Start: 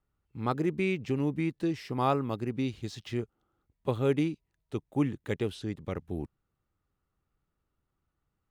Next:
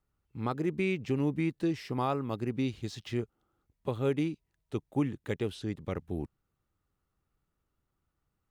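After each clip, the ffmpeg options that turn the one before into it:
ffmpeg -i in.wav -af "alimiter=limit=-19.5dB:level=0:latency=1:release=361" out.wav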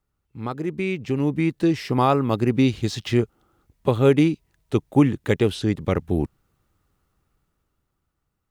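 ffmpeg -i in.wav -af "dynaudnorm=framelen=280:gausssize=11:maxgain=10dB,volume=3dB" out.wav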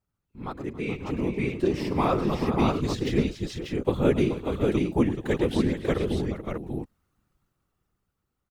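ffmpeg -i in.wav -af "aecho=1:1:111|278|429|553|590:0.188|0.15|0.299|0.106|0.668,afftfilt=real='hypot(re,im)*cos(2*PI*random(0))':imag='hypot(re,im)*sin(2*PI*random(1))':win_size=512:overlap=0.75" out.wav

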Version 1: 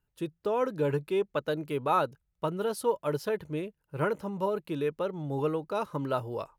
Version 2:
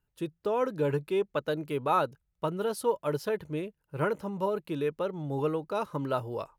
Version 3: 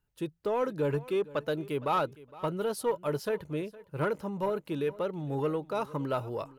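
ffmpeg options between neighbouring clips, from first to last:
ffmpeg -i in.wav -af anull out.wav
ffmpeg -i in.wav -af "asoftclip=type=tanh:threshold=-19.5dB,aecho=1:1:462|924:0.106|0.0191" out.wav

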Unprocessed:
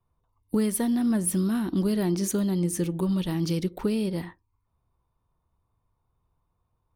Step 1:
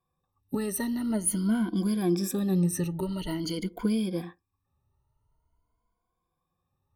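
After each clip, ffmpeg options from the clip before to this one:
ffmpeg -i in.wav -af "afftfilt=real='re*pow(10,20/40*sin(2*PI*(1.8*log(max(b,1)*sr/1024/100)/log(2)-(0.47)*(pts-256)/sr)))':imag='im*pow(10,20/40*sin(2*PI*(1.8*log(max(b,1)*sr/1024/100)/log(2)-(0.47)*(pts-256)/sr)))':win_size=1024:overlap=0.75,volume=-5.5dB" out.wav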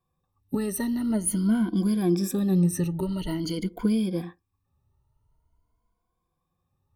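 ffmpeg -i in.wav -af "lowshelf=frequency=330:gain=4.5" out.wav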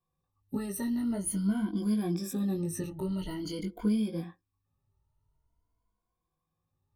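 ffmpeg -i in.wav -af "flanger=delay=18.5:depth=2.3:speed=0.47,volume=-3dB" out.wav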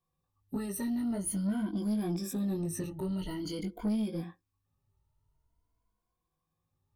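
ffmpeg -i in.wav -af "asoftclip=type=tanh:threshold=-25.5dB" out.wav

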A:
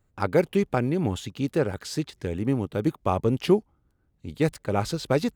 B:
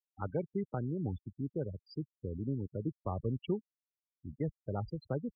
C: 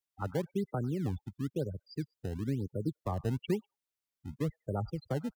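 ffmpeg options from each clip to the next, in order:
ffmpeg -i in.wav -filter_complex "[0:a]acrossover=split=160[link_01][link_02];[link_02]acompressor=threshold=-40dB:ratio=1.5[link_03];[link_01][link_03]amix=inputs=2:normalize=0,aeval=exprs='val(0)+0.00251*(sin(2*PI*60*n/s)+sin(2*PI*2*60*n/s)/2+sin(2*PI*3*60*n/s)/3+sin(2*PI*4*60*n/s)/4+sin(2*PI*5*60*n/s)/5)':channel_layout=same,afftfilt=real='re*gte(hypot(re,im),0.0501)':imag='im*gte(hypot(re,im),0.0501)':win_size=1024:overlap=0.75,volume=-7dB" out.wav
ffmpeg -i in.wav -filter_complex "[0:a]acrossover=split=290|400|1100[link_01][link_02][link_03][link_04];[link_02]acrusher=samples=22:mix=1:aa=0.000001:lfo=1:lforange=35.2:lforate=1[link_05];[link_04]aecho=1:1:98|196:0.224|0.0336[link_06];[link_01][link_05][link_03][link_06]amix=inputs=4:normalize=0,volume=2.5dB" out.wav

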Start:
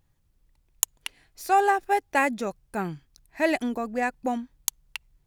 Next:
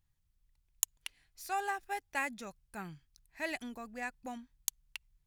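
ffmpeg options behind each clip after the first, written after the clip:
ffmpeg -i in.wav -af "equalizer=frequency=420:width_type=o:width=2.6:gain=-11,volume=-7.5dB" out.wav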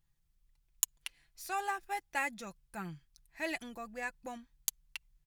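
ffmpeg -i in.wav -af "aecho=1:1:5.9:0.46" out.wav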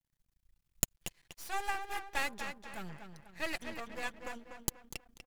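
ffmpeg -i in.wav -filter_complex "[0:a]asplit=2[link_01][link_02];[link_02]adelay=244,lowpass=frequency=3400:poles=1,volume=-7dB,asplit=2[link_03][link_04];[link_04]adelay=244,lowpass=frequency=3400:poles=1,volume=0.43,asplit=2[link_05][link_06];[link_06]adelay=244,lowpass=frequency=3400:poles=1,volume=0.43,asplit=2[link_07][link_08];[link_08]adelay=244,lowpass=frequency=3400:poles=1,volume=0.43,asplit=2[link_09][link_10];[link_10]adelay=244,lowpass=frequency=3400:poles=1,volume=0.43[link_11];[link_03][link_05][link_07][link_09][link_11]amix=inputs=5:normalize=0[link_12];[link_01][link_12]amix=inputs=2:normalize=0,aeval=exprs='max(val(0),0)':channel_layout=same,volume=3.5dB" out.wav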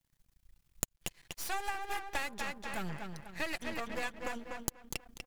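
ffmpeg -i in.wav -af "acompressor=threshold=-39dB:ratio=6,volume=7.5dB" out.wav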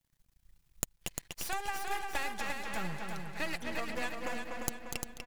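ffmpeg -i in.wav -af "aecho=1:1:349|698|1047|1396|1745:0.531|0.228|0.0982|0.0422|0.0181" out.wav

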